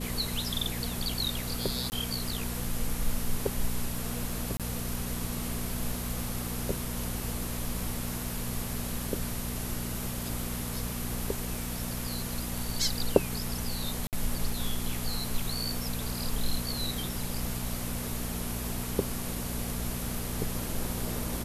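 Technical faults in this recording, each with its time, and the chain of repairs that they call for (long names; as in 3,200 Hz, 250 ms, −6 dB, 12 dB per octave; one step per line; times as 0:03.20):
mains hum 60 Hz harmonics 4 −37 dBFS
0:01.90–0:01.92: drop-out 19 ms
0:04.57–0:04.60: drop-out 27 ms
0:14.07–0:14.13: drop-out 58 ms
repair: hum removal 60 Hz, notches 4
repair the gap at 0:01.90, 19 ms
repair the gap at 0:04.57, 27 ms
repair the gap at 0:14.07, 58 ms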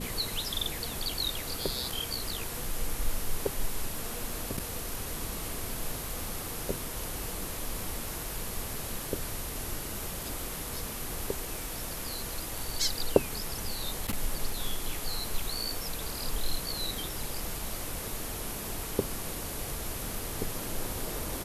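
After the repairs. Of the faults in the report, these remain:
none of them is left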